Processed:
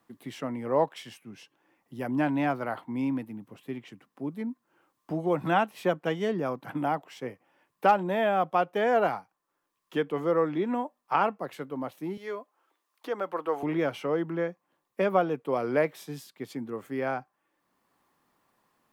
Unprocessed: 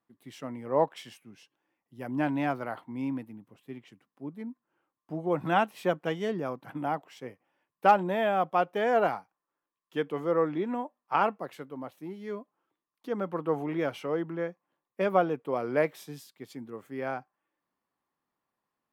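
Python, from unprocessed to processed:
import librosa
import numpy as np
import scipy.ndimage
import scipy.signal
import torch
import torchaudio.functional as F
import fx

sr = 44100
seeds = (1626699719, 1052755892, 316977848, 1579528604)

y = fx.highpass(x, sr, hz=500.0, slope=12, at=(12.17, 13.63))
y = fx.band_squash(y, sr, depth_pct=40)
y = F.gain(torch.from_numpy(y), 2.0).numpy()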